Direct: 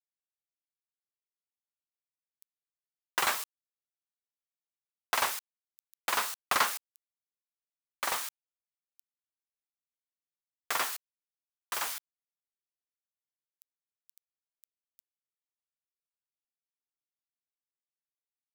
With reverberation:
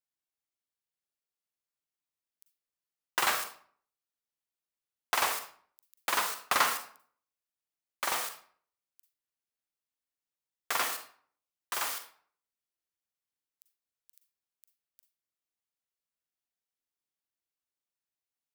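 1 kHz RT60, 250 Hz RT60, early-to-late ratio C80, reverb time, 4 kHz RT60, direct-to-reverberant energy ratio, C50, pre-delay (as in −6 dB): 0.50 s, 0.60 s, 11.5 dB, 0.50 s, 0.35 s, 6.0 dB, 7.5 dB, 37 ms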